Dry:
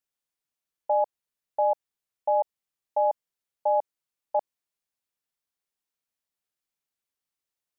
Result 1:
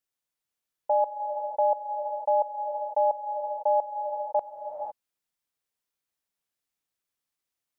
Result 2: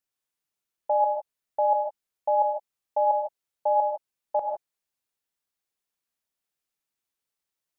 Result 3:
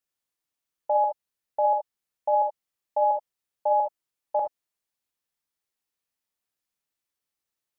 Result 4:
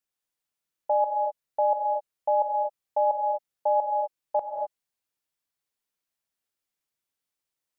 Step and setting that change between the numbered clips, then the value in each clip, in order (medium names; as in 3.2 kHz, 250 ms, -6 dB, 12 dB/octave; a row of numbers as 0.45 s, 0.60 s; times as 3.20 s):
gated-style reverb, gate: 530 ms, 180 ms, 90 ms, 280 ms